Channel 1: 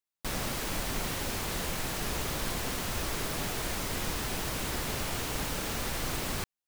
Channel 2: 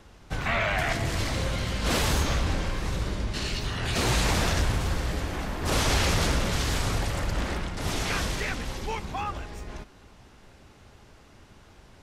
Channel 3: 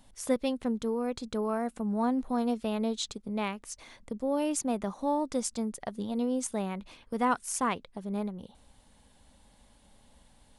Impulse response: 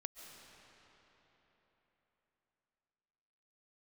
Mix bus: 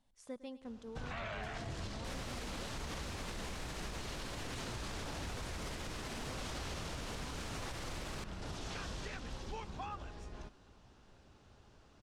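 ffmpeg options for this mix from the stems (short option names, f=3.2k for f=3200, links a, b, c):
-filter_complex "[0:a]adelay=1800,volume=-3dB,asplit=2[a][b];[b]volume=-4.5dB[c];[1:a]equalizer=f=2.1k:w=3.4:g=-6,adelay=650,volume=-9.5dB[d];[2:a]volume=-17dB,asplit=2[e][f];[f]volume=-17dB[g];[3:a]atrim=start_sample=2205[h];[c][h]afir=irnorm=-1:irlink=0[i];[g]aecho=0:1:107|214|321|428|535|642|749|856|963:1|0.58|0.336|0.195|0.113|0.0656|0.0381|0.0221|0.0128[j];[a][d][e][i][j]amix=inputs=5:normalize=0,lowpass=7.6k,alimiter=level_in=9.5dB:limit=-24dB:level=0:latency=1:release=176,volume=-9.5dB"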